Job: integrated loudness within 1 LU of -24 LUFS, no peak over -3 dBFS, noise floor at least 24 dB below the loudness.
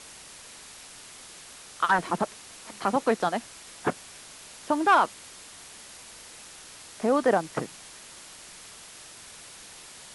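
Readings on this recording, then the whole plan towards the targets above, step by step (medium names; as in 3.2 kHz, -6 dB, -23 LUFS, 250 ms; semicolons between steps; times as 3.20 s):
noise floor -47 dBFS; noise floor target -51 dBFS; loudness -26.5 LUFS; peak level -9.5 dBFS; loudness target -24.0 LUFS
-> noise print and reduce 6 dB; trim +2.5 dB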